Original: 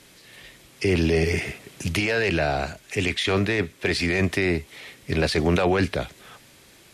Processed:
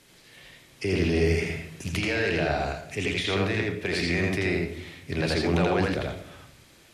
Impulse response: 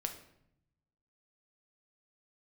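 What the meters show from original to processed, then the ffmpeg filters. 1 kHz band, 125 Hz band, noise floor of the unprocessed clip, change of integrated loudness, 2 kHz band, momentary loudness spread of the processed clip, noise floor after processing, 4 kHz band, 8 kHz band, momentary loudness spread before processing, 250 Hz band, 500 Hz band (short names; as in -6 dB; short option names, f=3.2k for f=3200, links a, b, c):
-2.5 dB, -2.0 dB, -53 dBFS, -3.0 dB, -3.0 dB, 11 LU, -55 dBFS, -3.0 dB, -4.5 dB, 9 LU, -2.5 dB, -3.0 dB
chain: -filter_complex "[0:a]asplit=2[a][b];[1:a]atrim=start_sample=2205,lowpass=7.3k,adelay=82[c];[b][c]afir=irnorm=-1:irlink=0,volume=0dB[d];[a][d]amix=inputs=2:normalize=0,volume=-6dB"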